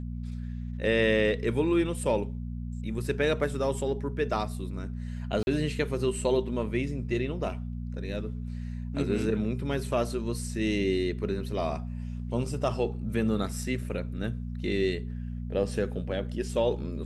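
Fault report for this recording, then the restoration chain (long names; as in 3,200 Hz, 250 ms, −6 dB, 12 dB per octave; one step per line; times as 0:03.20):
mains hum 60 Hz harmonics 4 −35 dBFS
0:05.43–0:05.47: drop-out 41 ms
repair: hum removal 60 Hz, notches 4
repair the gap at 0:05.43, 41 ms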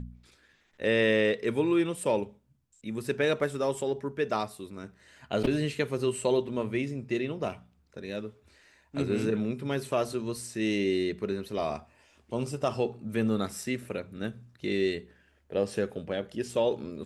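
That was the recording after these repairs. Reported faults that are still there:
none of them is left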